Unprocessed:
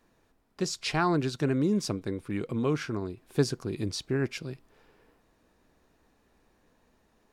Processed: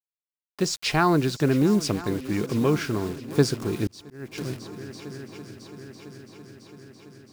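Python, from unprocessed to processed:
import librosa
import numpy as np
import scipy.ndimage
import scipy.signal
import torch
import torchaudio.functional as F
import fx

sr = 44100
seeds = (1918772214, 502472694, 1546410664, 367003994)

y = fx.quant_dither(x, sr, seeds[0], bits=8, dither='none')
y = fx.echo_heads(y, sr, ms=334, heads='second and third', feedback_pct=66, wet_db=-17.5)
y = fx.auto_swell(y, sr, attack_ms=641.0, at=(3.87, 4.38))
y = y * librosa.db_to_amplitude(5.5)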